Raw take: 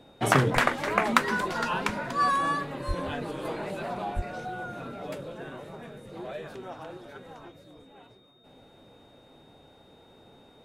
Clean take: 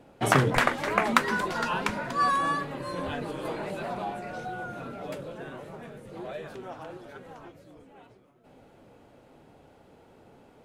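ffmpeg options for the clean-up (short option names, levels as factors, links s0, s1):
-filter_complex "[0:a]bandreject=f=3700:w=30,asplit=3[s0][s1][s2];[s0]afade=t=out:st=2.87:d=0.02[s3];[s1]highpass=f=140:w=0.5412,highpass=f=140:w=1.3066,afade=t=in:st=2.87:d=0.02,afade=t=out:st=2.99:d=0.02[s4];[s2]afade=t=in:st=2.99:d=0.02[s5];[s3][s4][s5]amix=inputs=3:normalize=0,asplit=3[s6][s7][s8];[s6]afade=t=out:st=4.15:d=0.02[s9];[s7]highpass=f=140:w=0.5412,highpass=f=140:w=1.3066,afade=t=in:st=4.15:d=0.02,afade=t=out:st=4.27:d=0.02[s10];[s8]afade=t=in:st=4.27:d=0.02[s11];[s9][s10][s11]amix=inputs=3:normalize=0"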